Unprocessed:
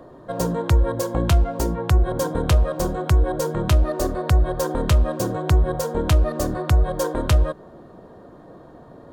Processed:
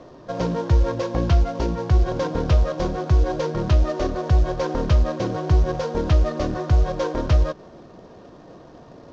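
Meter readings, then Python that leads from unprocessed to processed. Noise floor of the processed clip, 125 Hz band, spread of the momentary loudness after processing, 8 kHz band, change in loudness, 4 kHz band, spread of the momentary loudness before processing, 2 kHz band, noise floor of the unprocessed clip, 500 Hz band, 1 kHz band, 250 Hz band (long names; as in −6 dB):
−45 dBFS, −0.5 dB, 5 LU, −10.0 dB, −0.5 dB, −3.0 dB, 5 LU, −2.5 dB, −45 dBFS, −0.5 dB, −1.0 dB, −0.5 dB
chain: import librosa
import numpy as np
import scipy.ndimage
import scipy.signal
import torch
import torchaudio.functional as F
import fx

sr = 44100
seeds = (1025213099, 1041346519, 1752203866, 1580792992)

y = fx.cvsd(x, sr, bps=32000)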